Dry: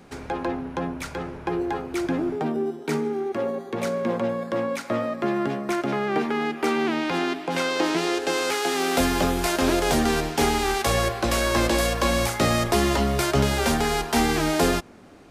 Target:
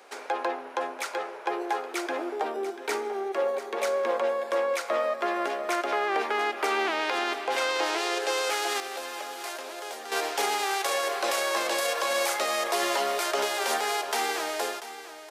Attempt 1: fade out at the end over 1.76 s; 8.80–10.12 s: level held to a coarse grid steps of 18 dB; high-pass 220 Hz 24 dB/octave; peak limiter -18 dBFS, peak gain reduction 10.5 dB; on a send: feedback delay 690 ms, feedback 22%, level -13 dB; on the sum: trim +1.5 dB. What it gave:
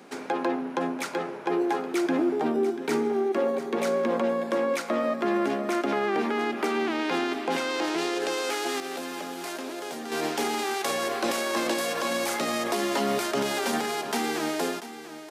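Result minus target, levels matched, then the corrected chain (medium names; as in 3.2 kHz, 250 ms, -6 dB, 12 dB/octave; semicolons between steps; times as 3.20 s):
250 Hz band +10.5 dB
fade out at the end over 1.76 s; 8.80–10.12 s: level held to a coarse grid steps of 18 dB; high-pass 460 Hz 24 dB/octave; peak limiter -18 dBFS, peak gain reduction 7.5 dB; on a send: feedback delay 690 ms, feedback 22%, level -13 dB; on the sum: trim +1.5 dB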